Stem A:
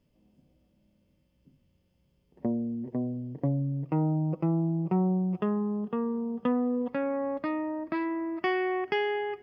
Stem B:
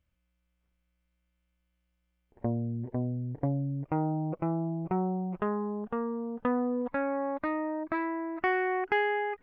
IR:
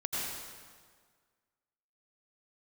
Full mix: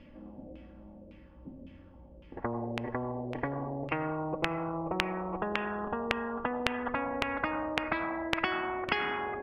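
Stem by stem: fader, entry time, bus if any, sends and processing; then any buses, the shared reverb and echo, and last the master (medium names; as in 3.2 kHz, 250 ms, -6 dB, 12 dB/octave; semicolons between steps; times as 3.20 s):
-1.0 dB, 0.00 s, send -11 dB, bass shelf 190 Hz +8 dB; comb 3.6 ms, depth 68%
+1.5 dB, 0.00 s, polarity flipped, send -9.5 dB, resonances exaggerated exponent 3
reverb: on, RT60 1.7 s, pre-delay 78 ms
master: bass shelf 150 Hz -11.5 dB; LFO low-pass saw down 1.8 Hz 510–2600 Hz; spectrum-flattening compressor 4:1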